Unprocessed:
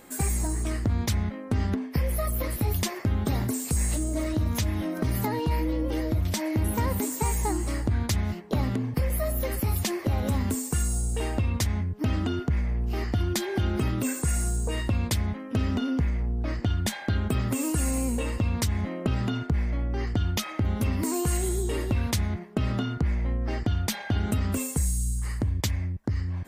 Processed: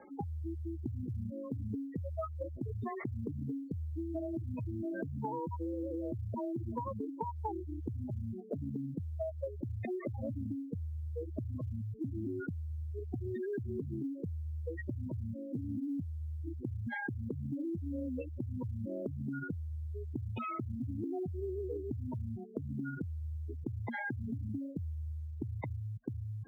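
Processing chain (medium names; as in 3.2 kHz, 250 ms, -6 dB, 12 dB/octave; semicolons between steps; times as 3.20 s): spectral gate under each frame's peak -10 dB strong; steep low-pass 2.2 kHz 36 dB/octave; tilt EQ +3.5 dB/octave; compression 6:1, threshold -37 dBFS, peak gain reduction 9 dB; frequency shift +18 Hz; short-mantissa float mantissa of 6-bit; trim +2.5 dB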